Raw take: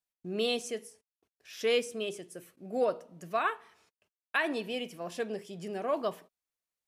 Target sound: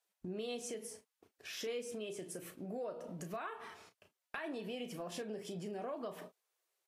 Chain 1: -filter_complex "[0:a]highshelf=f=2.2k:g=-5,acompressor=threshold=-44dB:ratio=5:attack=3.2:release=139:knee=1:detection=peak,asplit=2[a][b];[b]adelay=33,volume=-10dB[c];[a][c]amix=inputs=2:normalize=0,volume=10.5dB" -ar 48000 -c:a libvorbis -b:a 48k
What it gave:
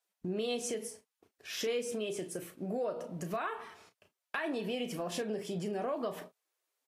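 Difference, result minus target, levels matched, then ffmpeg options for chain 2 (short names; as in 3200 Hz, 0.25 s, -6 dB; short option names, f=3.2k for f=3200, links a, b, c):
compressor: peak gain reduction -7 dB
-filter_complex "[0:a]highshelf=f=2.2k:g=-5,acompressor=threshold=-52.5dB:ratio=5:attack=3.2:release=139:knee=1:detection=peak,asplit=2[a][b];[b]adelay=33,volume=-10dB[c];[a][c]amix=inputs=2:normalize=0,volume=10.5dB" -ar 48000 -c:a libvorbis -b:a 48k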